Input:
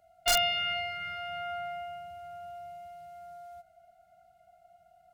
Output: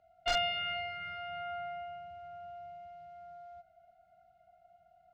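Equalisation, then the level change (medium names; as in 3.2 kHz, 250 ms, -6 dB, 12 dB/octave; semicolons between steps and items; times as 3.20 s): distance through air 180 m; -2.5 dB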